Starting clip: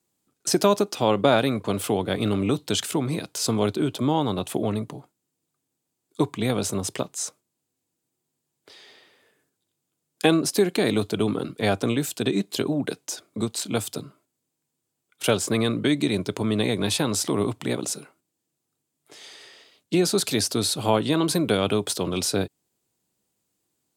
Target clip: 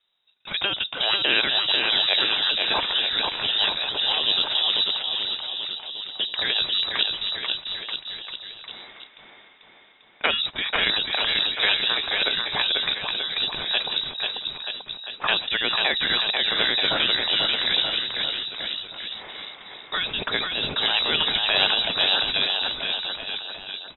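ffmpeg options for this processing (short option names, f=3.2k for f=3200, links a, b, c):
-filter_complex "[0:a]afftfilt=real='re*lt(hypot(re,im),0.282)':imag='im*lt(hypot(re,im),0.282)':win_size=1024:overlap=0.75,asplit=2[a][b];[b]aecho=0:1:490|931|1328|1685|2007:0.631|0.398|0.251|0.158|0.1[c];[a][c]amix=inputs=2:normalize=0,lowpass=f=3.4k:t=q:w=0.5098,lowpass=f=3.4k:t=q:w=0.6013,lowpass=f=3.4k:t=q:w=0.9,lowpass=f=3.4k:t=q:w=2.563,afreqshift=-4000,volume=7dB"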